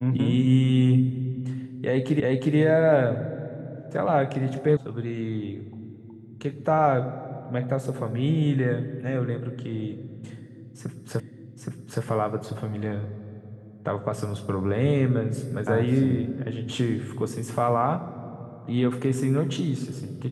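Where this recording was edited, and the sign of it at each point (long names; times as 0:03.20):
0:02.20: the same again, the last 0.36 s
0:04.77: cut off before it has died away
0:11.20: the same again, the last 0.82 s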